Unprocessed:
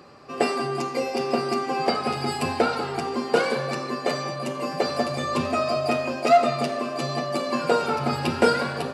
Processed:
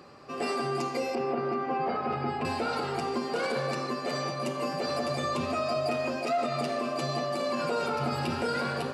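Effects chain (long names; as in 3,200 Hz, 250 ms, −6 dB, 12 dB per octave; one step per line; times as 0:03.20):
0:01.15–0:02.45: low-pass filter 2,000 Hz 12 dB per octave
brickwall limiter −19 dBFS, peak gain reduction 11 dB
convolution reverb RT60 0.50 s, pre-delay 100 ms, DRR 12 dB
level −2.5 dB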